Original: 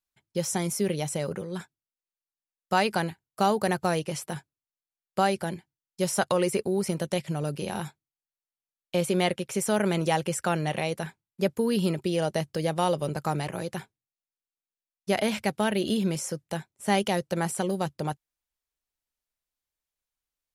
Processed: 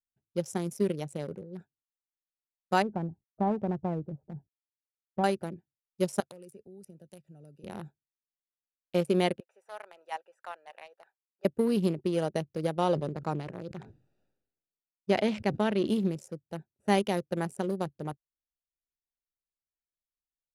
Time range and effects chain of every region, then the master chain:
2.82–5.24 G.711 law mismatch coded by mu + Gaussian blur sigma 9.6 samples + comb 1.1 ms, depth 37%
6.2–7.64 pre-emphasis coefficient 0.8 + three-band squash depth 40%
9.4–11.45 HPF 750 Hz 24 dB/oct + high shelf 2600 Hz -9.5 dB
12.78–15.87 LPF 6500 Hz + sustainer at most 61 dB/s
whole clip: Wiener smoothing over 41 samples; dynamic EQ 340 Hz, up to +5 dB, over -36 dBFS, Q 0.78; upward expander 1.5:1, over -30 dBFS; gain -2.5 dB

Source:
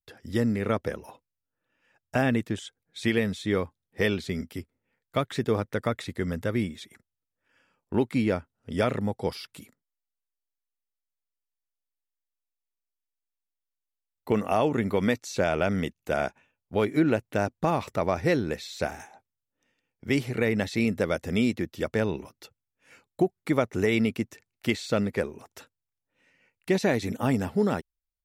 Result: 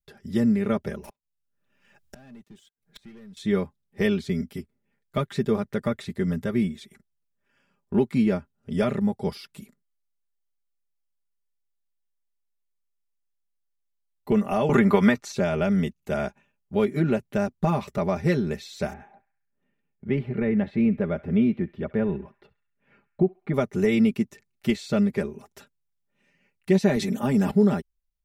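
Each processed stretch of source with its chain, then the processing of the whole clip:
1.03–3.37 sample leveller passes 3 + flipped gate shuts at -25 dBFS, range -33 dB + three-band squash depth 70%
14.69–15.32 bell 1200 Hz +10.5 dB 2.1 oct + three-band squash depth 100%
18.93–23.54 air absorption 490 m + narrowing echo 67 ms, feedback 60%, band-pass 1900 Hz, level -18 dB
26.96–27.51 HPF 140 Hz + sustainer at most 34 dB/s
whole clip: low shelf 270 Hz +10.5 dB; comb 5 ms, depth 79%; gain -4.5 dB

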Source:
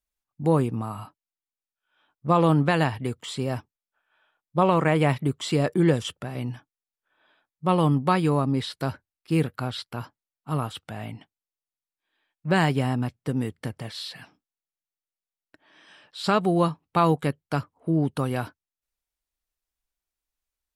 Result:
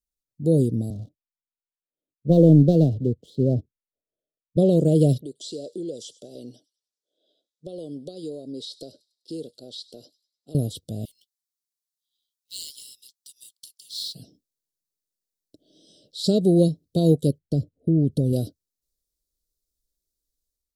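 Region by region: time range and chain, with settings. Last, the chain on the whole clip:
0.9–4.57 LPF 1600 Hz + sample leveller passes 1 + three-band expander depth 40%
5.21–10.55 BPF 470–7300 Hz + compressor 2.5:1, threshold -38 dBFS + thin delay 0.1 s, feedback 42%, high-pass 4500 Hz, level -15.5 dB
11.05–14.15 steep high-pass 1900 Hz 72 dB/oct + short-mantissa float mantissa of 2-bit
17.38–18.33 gate -52 dBFS, range -10 dB + tilt -2 dB/oct + compressor 2.5:1, threshold -24 dBFS
whole clip: inverse Chebyshev band-stop 860–2500 Hz, stop band 40 dB; AGC gain up to 9 dB; gain -3 dB

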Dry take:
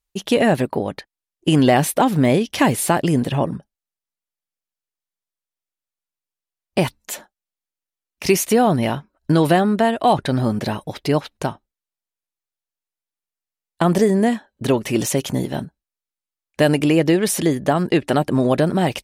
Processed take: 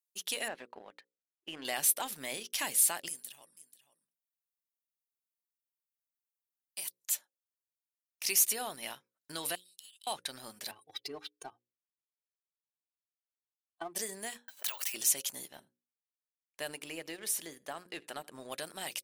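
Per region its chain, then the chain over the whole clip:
0.48–1.65 LPF 2100 Hz + bell 130 Hz -12.5 dB 0.54 oct
3.08–7 pre-emphasis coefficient 0.8 + echo 0.486 s -13 dB
9.55–10.07 Chebyshev high-pass 2900 Hz, order 5 + compressor 16:1, threshold -40 dBFS
10.71–13.96 spectral contrast raised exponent 1.8 + HPF 50 Hz + comb 2.6 ms, depth 96%
14.48–14.94 inverse Chebyshev high-pass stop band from 220 Hz, stop band 60 dB + careless resampling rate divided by 2×, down filtered, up hold + backwards sustainer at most 23 dB/s
15.48–18.52 high shelf 2300 Hz -9.5 dB + echo 79 ms -22 dB
whole clip: differentiator; notches 60/120/180/240/300/360/420/480/540 Hz; sample leveller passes 1; gain -6.5 dB

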